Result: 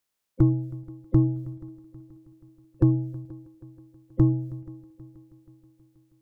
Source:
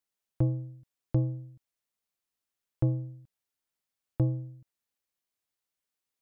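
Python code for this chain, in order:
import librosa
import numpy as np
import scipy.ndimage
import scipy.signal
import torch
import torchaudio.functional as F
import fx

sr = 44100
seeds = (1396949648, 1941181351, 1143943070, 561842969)

y = fx.spec_quant(x, sr, step_db=30)
y = fx.echo_heads(y, sr, ms=160, heads='second and third', feedback_pct=55, wet_db=-22)
y = F.gain(torch.from_numpy(y), 7.5).numpy()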